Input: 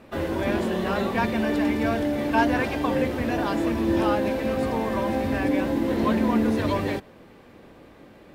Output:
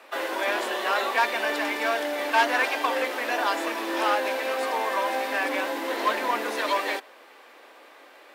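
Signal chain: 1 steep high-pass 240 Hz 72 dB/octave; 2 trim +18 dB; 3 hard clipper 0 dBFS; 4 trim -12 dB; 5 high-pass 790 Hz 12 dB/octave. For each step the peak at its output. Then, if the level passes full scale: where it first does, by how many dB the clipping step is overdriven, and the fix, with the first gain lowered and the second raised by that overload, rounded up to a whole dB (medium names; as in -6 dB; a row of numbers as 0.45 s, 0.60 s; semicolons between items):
-9.0 dBFS, +9.0 dBFS, 0.0 dBFS, -12.0 dBFS, -8.5 dBFS; step 2, 9.0 dB; step 2 +9 dB, step 4 -3 dB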